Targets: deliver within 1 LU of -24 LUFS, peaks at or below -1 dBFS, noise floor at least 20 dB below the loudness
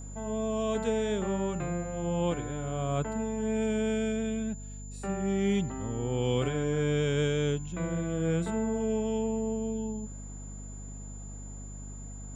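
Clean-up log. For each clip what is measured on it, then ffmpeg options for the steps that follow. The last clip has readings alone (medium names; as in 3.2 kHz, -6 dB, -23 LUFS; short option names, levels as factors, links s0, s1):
hum 50 Hz; highest harmonic 250 Hz; hum level -39 dBFS; steady tone 7.1 kHz; tone level -48 dBFS; loudness -31.0 LUFS; peak level -16.0 dBFS; loudness target -24.0 LUFS
-> -af "bandreject=f=50:t=h:w=4,bandreject=f=100:t=h:w=4,bandreject=f=150:t=h:w=4,bandreject=f=200:t=h:w=4,bandreject=f=250:t=h:w=4"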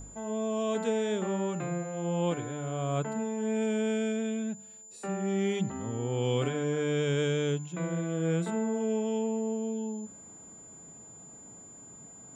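hum not found; steady tone 7.1 kHz; tone level -48 dBFS
-> -af "bandreject=f=7100:w=30"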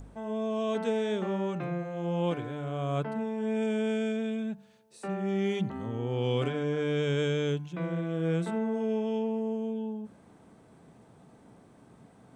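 steady tone not found; loudness -31.5 LUFS; peak level -16.5 dBFS; loudness target -24.0 LUFS
-> -af "volume=2.37"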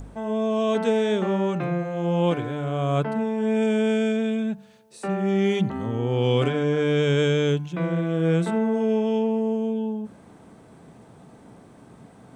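loudness -24.0 LUFS; peak level -9.0 dBFS; noise floor -50 dBFS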